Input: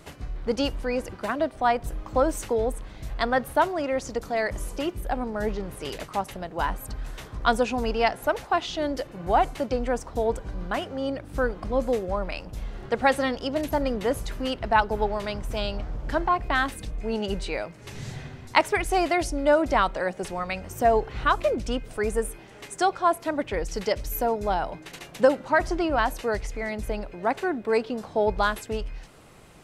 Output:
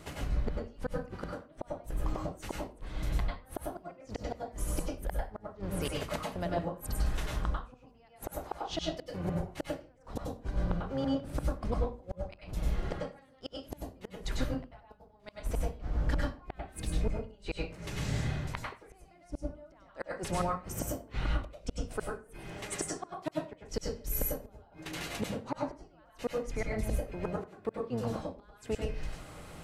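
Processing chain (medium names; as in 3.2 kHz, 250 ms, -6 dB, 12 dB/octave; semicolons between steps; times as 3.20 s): octave divider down 1 oct, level -4 dB; in parallel at -3 dB: compression 20:1, threshold -29 dBFS, peak gain reduction 17 dB; on the sum: inverted gate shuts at -16 dBFS, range -37 dB; wow and flutter 17 cents; reverberation RT60 0.35 s, pre-delay 91 ms, DRR -2 dB; trim -6 dB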